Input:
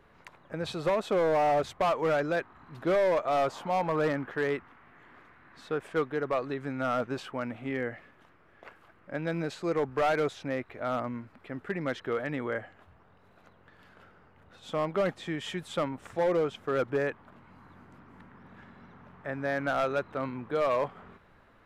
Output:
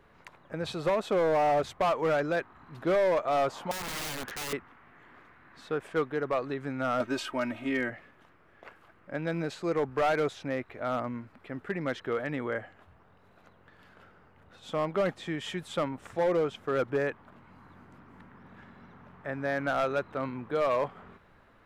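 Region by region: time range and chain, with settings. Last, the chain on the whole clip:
3.71–4.53 s: peaking EQ 4.7 kHz +7.5 dB 2.7 oct + compression, threshold -28 dBFS + integer overflow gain 31 dB
7.00–7.90 s: treble shelf 2.3 kHz +7.5 dB + comb 3.2 ms, depth 76%
whole clip: none

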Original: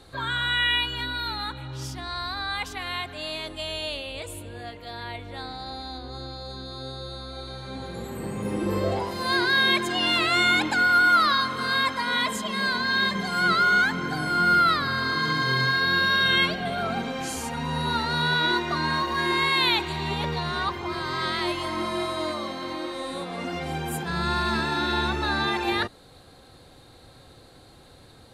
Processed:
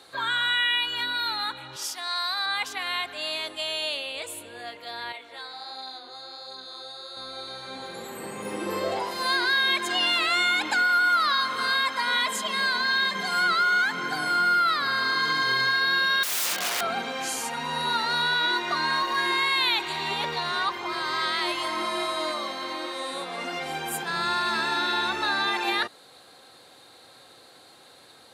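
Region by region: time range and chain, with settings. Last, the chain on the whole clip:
1.76–2.46 s: high-pass 470 Hz + treble shelf 5.6 kHz +8 dB
5.12–7.17 s: high-pass 450 Hz 6 dB/octave + chorus 1.4 Hz, delay 15 ms, depth 6.5 ms
16.23–16.81 s: treble shelf 3.8 kHz +2.5 dB + integer overflow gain 24.5 dB
whole clip: frequency weighting A; compression 2.5:1, threshold -23 dBFS; treble shelf 11 kHz +10.5 dB; trim +1.5 dB

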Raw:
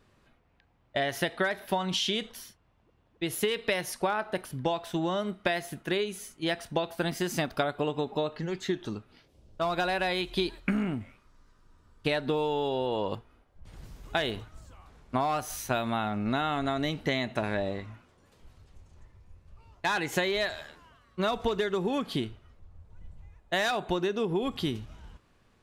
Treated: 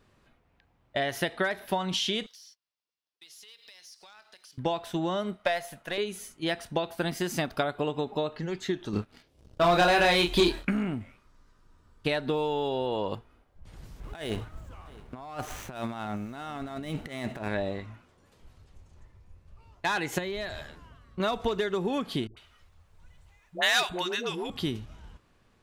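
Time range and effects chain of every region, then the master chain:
2.26–4.58 s: band-pass filter 5.1 kHz, Q 3.1 + compression 5:1, threshold -55 dBFS + waveshaping leveller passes 2
5.36–5.98 s: partial rectifier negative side -3 dB + resonant low shelf 460 Hz -6 dB, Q 3
8.93–10.65 s: doubling 29 ms -4 dB + waveshaping leveller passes 2
14.00–17.48 s: median filter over 9 samples + compressor with a negative ratio -34 dBFS, ratio -0.5 + delay 661 ms -21 dB
20.18–21.20 s: bass shelf 250 Hz +11.5 dB + compression 3:1, threshold -32 dBFS
22.27–24.50 s: tilt shelf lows -8.5 dB, about 860 Hz + phase dispersion highs, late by 99 ms, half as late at 530 Hz
whole clip: none

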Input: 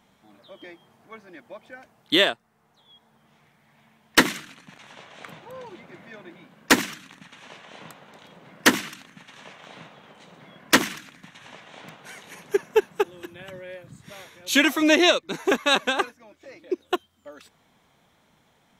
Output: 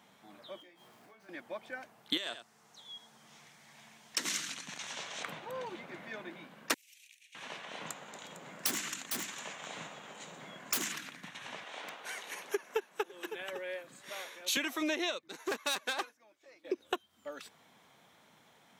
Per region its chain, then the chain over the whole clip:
0.60–1.29 s: jump at every zero crossing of -53.5 dBFS + compression 12:1, threshold -49 dBFS + feedback comb 60 Hz, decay 0.27 s, mix 80%
2.17–5.23 s: peaking EQ 6.4 kHz +13 dB 1.5 oct + compression 16:1, threshold -22 dBFS + delay 89 ms -15 dB
6.74–7.35 s: elliptic high-pass 2.4 kHz, stop band 50 dB + peaking EQ 3.8 kHz -11 dB 1.7 oct + compression 10:1, threshold -47 dBFS
7.86–10.92 s: peaking EQ 7.1 kHz +14 dB 0.33 oct + integer overflow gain 15.5 dB + delay 454 ms -13.5 dB
11.64–14.57 s: high-pass 350 Hz + delay 553 ms -22 dB
15.28–16.65 s: valve stage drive 24 dB, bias 0.65 + tone controls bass -8 dB, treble +3 dB + upward expansion, over -45 dBFS
whole clip: high-pass 110 Hz; bass shelf 360 Hz -5.5 dB; compression 12:1, threshold -31 dBFS; trim +1 dB

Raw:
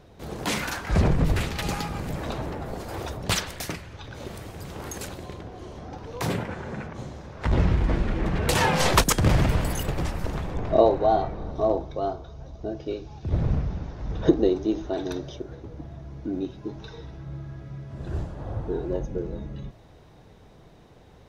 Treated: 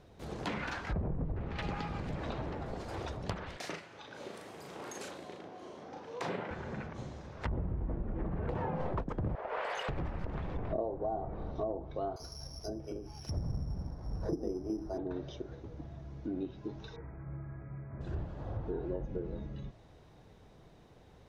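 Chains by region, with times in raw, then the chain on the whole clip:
3.57–6.51 s: high-pass 270 Hz + peaking EQ 12 kHz -3.5 dB 2.7 oct + doubling 37 ms -4 dB
9.35–9.89 s: steep high-pass 430 Hz 48 dB/octave + overdrive pedal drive 15 dB, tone 3.3 kHz, clips at -16 dBFS
12.16–14.98 s: treble shelf 3 kHz +10.5 dB + bands offset in time highs, lows 40 ms, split 430 Hz + careless resampling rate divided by 8×, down filtered, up zero stuff
16.96–18.01 s: brick-wall FIR low-pass 2.5 kHz + peaking EQ 1.2 kHz +3 dB 0.83 oct
whole clip: low-pass that closes with the level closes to 860 Hz, closed at -20 dBFS; compression 6:1, threshold -25 dBFS; trim -6.5 dB

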